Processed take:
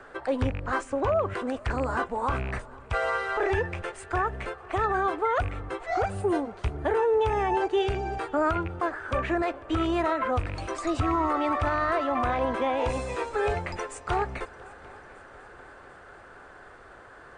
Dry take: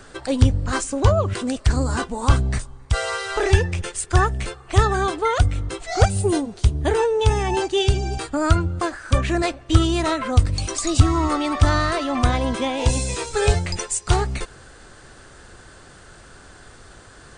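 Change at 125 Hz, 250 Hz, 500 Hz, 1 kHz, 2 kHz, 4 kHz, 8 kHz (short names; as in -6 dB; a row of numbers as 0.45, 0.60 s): -14.5, -7.0, -3.5, -2.0, -4.0, -13.5, -20.0 dB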